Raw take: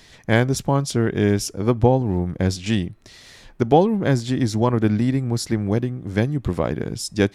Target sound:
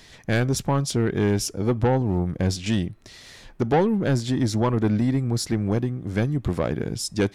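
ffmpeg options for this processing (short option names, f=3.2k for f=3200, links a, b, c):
-af "asoftclip=type=tanh:threshold=-14dB"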